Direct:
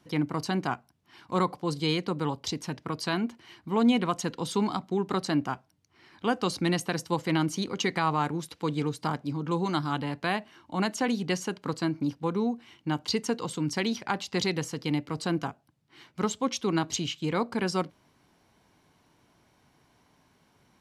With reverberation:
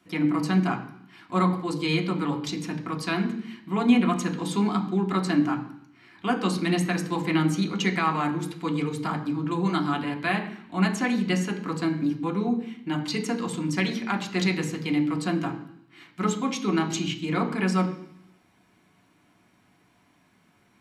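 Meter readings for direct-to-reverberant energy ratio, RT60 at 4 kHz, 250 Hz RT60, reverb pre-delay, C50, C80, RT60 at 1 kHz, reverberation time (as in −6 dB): 1.0 dB, 0.95 s, 0.85 s, 3 ms, 11.0 dB, 13.0 dB, 0.70 s, 0.70 s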